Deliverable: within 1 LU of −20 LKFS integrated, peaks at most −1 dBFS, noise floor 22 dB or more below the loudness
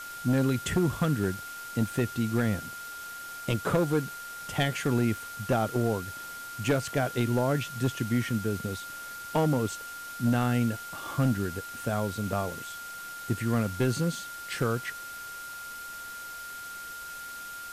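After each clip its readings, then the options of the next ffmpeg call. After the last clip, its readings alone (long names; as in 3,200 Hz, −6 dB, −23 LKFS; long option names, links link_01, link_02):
interfering tone 1,400 Hz; level of the tone −39 dBFS; background noise floor −41 dBFS; target noise floor −53 dBFS; integrated loudness −30.5 LKFS; sample peak −15.5 dBFS; target loudness −20.0 LKFS
→ -af "bandreject=frequency=1400:width=30"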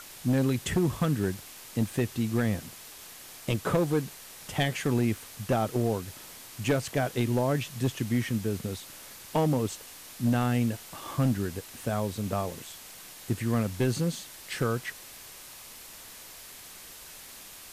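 interfering tone none found; background noise floor −47 dBFS; target noise floor −52 dBFS
→ -af "afftdn=noise_reduction=6:noise_floor=-47"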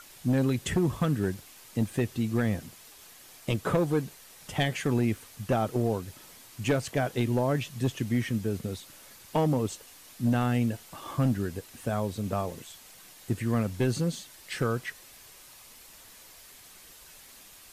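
background noise floor −52 dBFS; integrated loudness −29.5 LKFS; sample peak −16.0 dBFS; target loudness −20.0 LKFS
→ -af "volume=9.5dB"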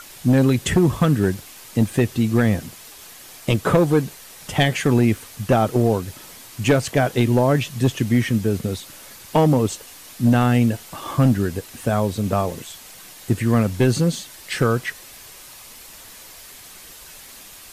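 integrated loudness −20.0 LKFS; sample peak −6.5 dBFS; background noise floor −42 dBFS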